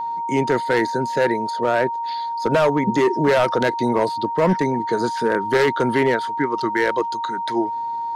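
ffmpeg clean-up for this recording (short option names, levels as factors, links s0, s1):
-af "bandreject=f=930:w=30"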